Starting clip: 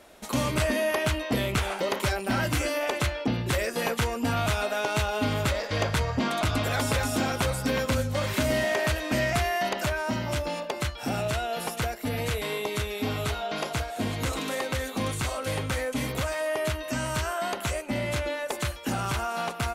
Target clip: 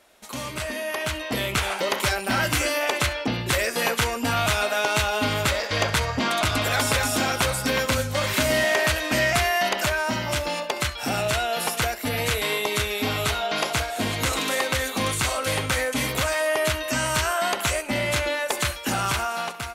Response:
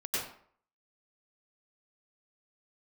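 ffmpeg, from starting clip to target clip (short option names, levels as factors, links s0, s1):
-filter_complex "[0:a]tiltshelf=f=710:g=-4,dynaudnorm=f=830:g=3:m=4.22,asplit=2[s0][s1];[1:a]atrim=start_sample=2205,atrim=end_sample=4410,asetrate=61740,aresample=44100[s2];[s1][s2]afir=irnorm=-1:irlink=0,volume=0.251[s3];[s0][s3]amix=inputs=2:normalize=0,volume=0.447"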